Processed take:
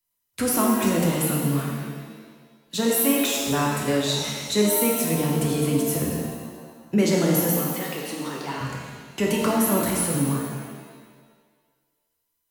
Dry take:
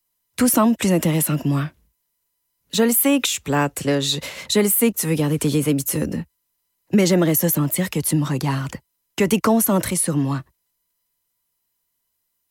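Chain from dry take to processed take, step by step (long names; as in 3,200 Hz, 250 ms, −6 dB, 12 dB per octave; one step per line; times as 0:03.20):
0:07.54–0:08.61: band-pass filter 360–5,500 Hz
reverb with rising layers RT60 1.5 s, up +7 semitones, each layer −8 dB, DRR −2 dB
level −7.5 dB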